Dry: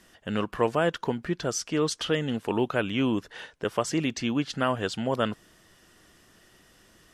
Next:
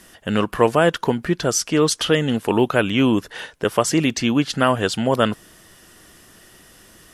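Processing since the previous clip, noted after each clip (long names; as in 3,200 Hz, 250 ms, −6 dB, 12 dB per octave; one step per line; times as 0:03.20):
parametric band 11,000 Hz +8.5 dB 0.67 octaves
level +8.5 dB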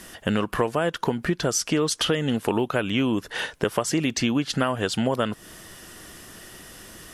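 downward compressor 6 to 1, threshold −25 dBFS, peak gain reduction 14.5 dB
level +4.5 dB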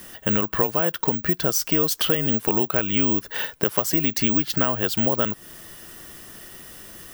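bad sample-rate conversion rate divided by 2×, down none, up zero stuff
level −1 dB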